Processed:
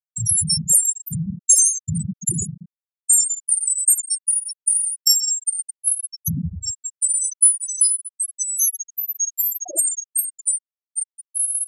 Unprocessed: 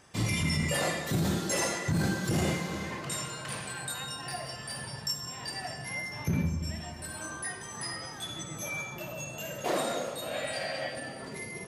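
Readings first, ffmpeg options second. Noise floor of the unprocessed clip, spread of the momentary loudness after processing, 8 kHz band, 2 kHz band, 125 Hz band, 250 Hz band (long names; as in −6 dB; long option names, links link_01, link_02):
−43 dBFS, 12 LU, +22.0 dB, below −40 dB, +2.5 dB, +0.5 dB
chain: -af "aexciter=amount=5.3:drive=9.4:freq=5900,acontrast=50,afftfilt=real='re*gte(hypot(re,im),0.562)':imag='im*gte(hypot(re,im),0.562)':win_size=1024:overlap=0.75"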